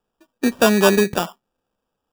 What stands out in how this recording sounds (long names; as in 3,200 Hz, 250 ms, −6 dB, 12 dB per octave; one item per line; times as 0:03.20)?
aliases and images of a low sample rate 2,100 Hz, jitter 0%